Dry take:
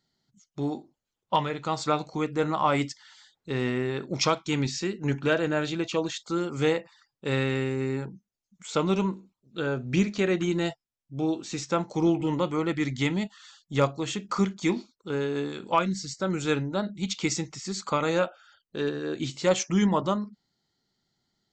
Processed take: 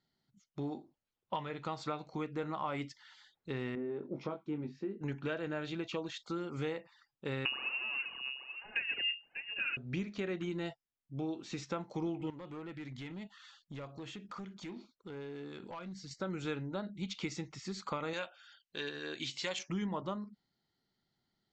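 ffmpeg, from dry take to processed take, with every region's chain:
-filter_complex "[0:a]asettb=1/sr,asplit=3[s0][s1][s2];[s0]atrim=end=3.754[s3];[s1]atrim=start=3.75:end=5.01,asetpts=PTS-STARTPTS,afade=t=in:d=0.004:c=qsin,afade=t=out:st=1.256:d=0.004:c=qsin,bandpass=f=340:t=q:w=1,asplit=2[s4][s5];[s5]adelay=20,volume=0.562[s6];[s4][s6]amix=inputs=2:normalize=0,atrim=end_sample=55566[s7];[s2]atrim=start=5.006[s8];[s3][s7]acrossfade=d=0.004:c1=hsin:c2=qsin[s9];[s9][s8]acrossfade=d=0.004:c1=qsin:c2=hsin,asettb=1/sr,asplit=3[s10][s11][s12];[s10]atrim=end=7.454[s13];[s11]atrim=start=7.45:end=9.77,asetpts=PTS-STARTPTS,afade=t=in:d=0.004:c=qsin,afade=t=out:st=2.316:d=0.004:c=qsin,aecho=1:1:592:0.15,atrim=end_sample=102312,aphaser=in_gain=1:out_gain=1:delay=4.7:decay=0.77:speed=1.2:type=sinusoidal,lowpass=f=2600:t=q:w=0.5098,lowpass=f=2600:t=q:w=0.6013,lowpass=f=2600:t=q:w=0.9,lowpass=f=2600:t=q:w=2.563,afreqshift=-3000[s14];[s12]atrim=start=9.766[s15];[s13][s14]acrossfade=d=0.004:c1=hsin:c2=qsin[s16];[s16][s15]acrossfade=d=0.004:c1=qsin:c2=hsin,asettb=1/sr,asplit=3[s17][s18][s19];[s17]atrim=end=12.304[s20];[s18]atrim=start=12.3:end=16.11,asetpts=PTS-STARTPTS,afade=t=in:d=0.004:c=qsin,afade=t=out:st=3.806:d=0.004:c=qsin,acompressor=threshold=0.0126:ratio=4:attack=3.2:release=140:knee=1:detection=peak,asoftclip=type=hard:threshold=0.0178[s21];[s19]atrim=start=16.106[s22];[s20][s21]acrossfade=d=0.004:c1=hsin:c2=qsin[s23];[s23][s22]acrossfade=d=0.004:c1=qsin:c2=hsin,asettb=1/sr,asplit=3[s24][s25][s26];[s24]atrim=end=18.134[s27];[s25]atrim=start=18.13:end=19.59,asetpts=PTS-STARTPTS,afade=t=in:d=0.004:c=qsin,afade=t=out:st=1.456:d=0.004:c=qsin,tiltshelf=f=1100:g=-9.5,bandreject=f=1300:w=8[s28];[s26]atrim=start=19.586[s29];[s27][s28]acrossfade=d=0.004:c1=hsin:c2=qsin[s30];[s30][s29]acrossfade=d=0.004:c1=qsin:c2=hsin,lowpass=3100,aemphasis=mode=production:type=cd,acompressor=threshold=0.0251:ratio=3,volume=0.596"

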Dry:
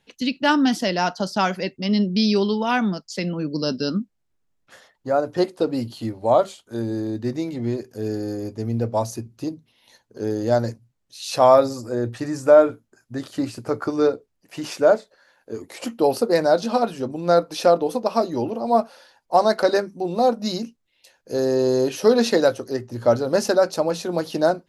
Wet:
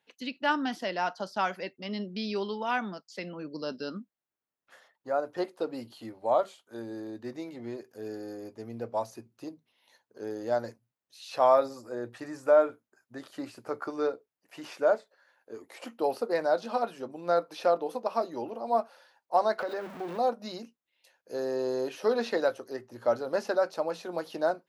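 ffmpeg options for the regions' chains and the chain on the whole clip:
-filter_complex "[0:a]asettb=1/sr,asplit=3[s0][s1][s2];[s0]atrim=end=19.594[s3];[s1]atrim=start=19.59:end=20.18,asetpts=PTS-STARTPTS,afade=t=in:d=0.004:c=qsin,afade=t=out:st=0.586:d=0.004:c=qsin,aeval=exprs='val(0)+0.5*0.0531*sgn(val(0))':c=same,highshelf=f=4900:g=-12,acompressor=threshold=0.1:ratio=6:attack=3.2:release=140:knee=1:detection=peak[s4];[s2]atrim=start=20.176[s5];[s3][s4]acrossfade=d=0.004:c1=hsin:c2=qsin[s6];[s6][s5]acrossfade=d=0.004:c1=qsin:c2=hsin,highpass=f=1300:p=1,acrossover=split=4700[s7][s8];[s8]acompressor=threshold=0.01:ratio=4:attack=1:release=60[s9];[s7][s9]amix=inputs=2:normalize=0,equalizer=f=6700:w=0.31:g=-12.5"

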